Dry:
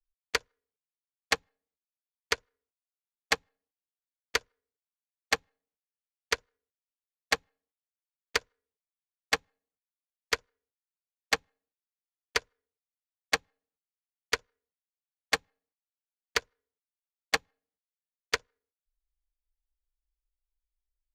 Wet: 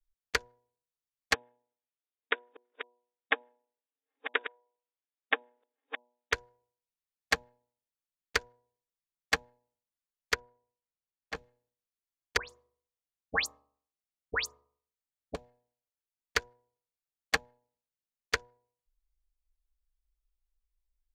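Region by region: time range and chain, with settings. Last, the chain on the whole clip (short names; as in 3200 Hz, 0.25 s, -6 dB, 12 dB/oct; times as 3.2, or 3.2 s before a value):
1.34–6.33 reverse delay 0.614 s, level -10 dB + brick-wall FIR band-pass 230–3800 Hz
10.34–11.35 LPF 2000 Hz 6 dB/oct + compressor 1.5:1, threshold -46 dBFS
12.37–15.35 de-hum 71.57 Hz, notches 18 + dispersion highs, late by 0.13 s, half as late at 2500 Hz
whole clip: low shelf 170 Hz +9.5 dB; de-hum 121.6 Hz, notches 8; dynamic EQ 1600 Hz, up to +5 dB, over -42 dBFS, Q 2.5; gain -3 dB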